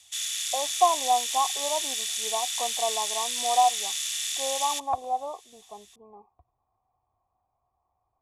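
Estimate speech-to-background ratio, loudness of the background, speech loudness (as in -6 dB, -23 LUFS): -0.5 dB, -28.0 LUFS, -28.5 LUFS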